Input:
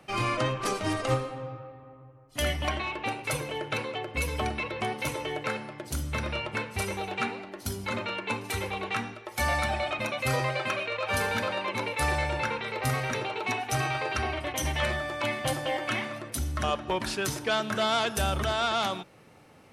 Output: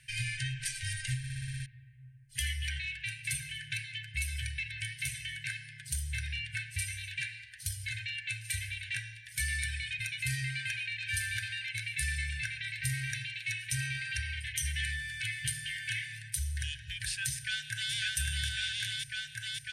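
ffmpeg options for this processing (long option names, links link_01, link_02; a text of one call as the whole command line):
ffmpeg -i in.wav -filter_complex "[0:a]asplit=2[link_01][link_02];[link_02]afade=type=in:start_time=17.34:duration=0.01,afade=type=out:start_time=17.93:duration=0.01,aecho=0:1:550|1100|1650|2200|2750|3300|3850|4400|4950|5500|6050|6600:0.891251|0.713001|0.570401|0.45632|0.365056|0.292045|0.233636|0.186909|0.149527|0.119622|0.0956973|0.0765579[link_03];[link_01][link_03]amix=inputs=2:normalize=0,asplit=9[link_04][link_05][link_06][link_07][link_08][link_09][link_10][link_11][link_12];[link_04]atrim=end=1.242[link_13];[link_05]atrim=start=1.178:end=1.242[link_14];[link_06]atrim=start=1.178:end=1.242[link_15];[link_07]atrim=start=1.178:end=1.242[link_16];[link_08]atrim=start=1.178:end=1.242[link_17];[link_09]atrim=start=1.178:end=1.242[link_18];[link_10]atrim=start=1.178:end=1.242[link_19];[link_11]atrim=start=1.178:end=1.242[link_20];[link_12]atrim=start=1.658[link_21];[link_13][link_14]acrossfade=duration=0.004:curve1=hsin:curve2=hsin[link_22];[link_22][link_15]acrossfade=duration=0.004:curve1=hsin:curve2=hsin[link_23];[link_23][link_16]acrossfade=duration=0.004:curve1=hsin:curve2=hsin[link_24];[link_24][link_17]acrossfade=duration=0.004:curve1=hsin:curve2=hsin[link_25];[link_25][link_18]acrossfade=duration=0.004:curve1=hsin:curve2=hsin[link_26];[link_26][link_19]acrossfade=duration=0.004:curve1=hsin:curve2=hsin[link_27];[link_27][link_20]acrossfade=duration=0.004:curve1=hsin:curve2=hsin[link_28];[link_28][link_21]acrossfade=duration=0.004:curve1=hsin:curve2=hsin,equalizer=frequency=8900:width=8:gain=14.5,afftfilt=real='re*(1-between(b*sr/4096,140,1500))':imag='im*(1-between(b*sr/4096,140,1500))':win_size=4096:overlap=0.75,acompressor=threshold=-37dB:ratio=1.5" out.wav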